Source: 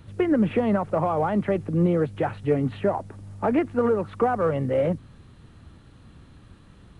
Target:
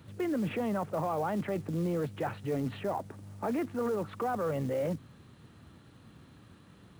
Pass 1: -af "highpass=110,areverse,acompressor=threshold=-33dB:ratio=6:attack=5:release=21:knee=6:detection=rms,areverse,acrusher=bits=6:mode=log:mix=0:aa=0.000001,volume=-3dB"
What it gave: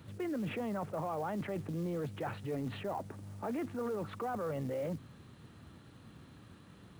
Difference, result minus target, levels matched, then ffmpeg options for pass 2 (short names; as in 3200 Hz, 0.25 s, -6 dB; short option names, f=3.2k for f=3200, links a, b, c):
compressor: peak gain reduction +5.5 dB
-af "highpass=110,areverse,acompressor=threshold=-26.5dB:ratio=6:attack=5:release=21:knee=6:detection=rms,areverse,acrusher=bits=6:mode=log:mix=0:aa=0.000001,volume=-3dB"